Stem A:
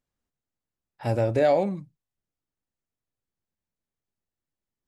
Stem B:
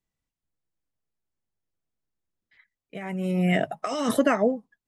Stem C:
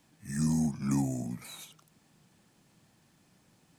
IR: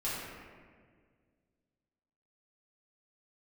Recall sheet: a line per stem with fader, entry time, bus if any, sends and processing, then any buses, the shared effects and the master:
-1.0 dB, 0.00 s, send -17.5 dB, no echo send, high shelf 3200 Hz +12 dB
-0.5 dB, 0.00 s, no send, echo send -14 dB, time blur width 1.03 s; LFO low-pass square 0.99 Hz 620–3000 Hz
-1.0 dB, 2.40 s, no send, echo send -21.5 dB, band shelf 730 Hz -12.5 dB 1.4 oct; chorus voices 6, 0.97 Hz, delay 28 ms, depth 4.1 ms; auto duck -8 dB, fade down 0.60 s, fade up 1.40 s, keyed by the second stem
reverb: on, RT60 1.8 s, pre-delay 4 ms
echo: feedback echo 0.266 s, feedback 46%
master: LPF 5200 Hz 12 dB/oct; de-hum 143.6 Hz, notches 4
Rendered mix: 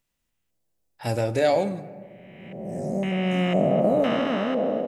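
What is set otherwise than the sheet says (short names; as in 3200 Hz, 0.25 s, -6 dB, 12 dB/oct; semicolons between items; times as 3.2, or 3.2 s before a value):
stem B -0.5 dB -> +7.0 dB; master: missing LPF 5200 Hz 12 dB/oct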